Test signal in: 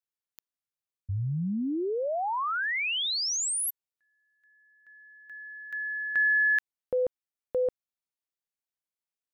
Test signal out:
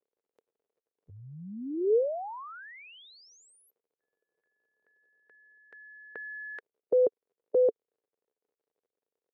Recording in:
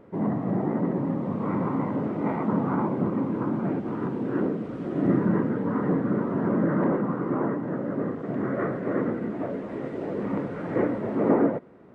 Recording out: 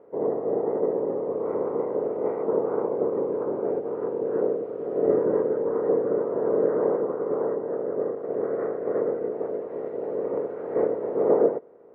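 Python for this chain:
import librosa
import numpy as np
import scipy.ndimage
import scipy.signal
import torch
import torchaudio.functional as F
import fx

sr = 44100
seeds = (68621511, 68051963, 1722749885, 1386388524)

y = fx.spec_clip(x, sr, under_db=14)
y = fx.dmg_crackle(y, sr, seeds[0], per_s=69.0, level_db=-55.0)
y = fx.bandpass_q(y, sr, hz=450.0, q=5.2)
y = y * 10.0 ** (9.0 / 20.0)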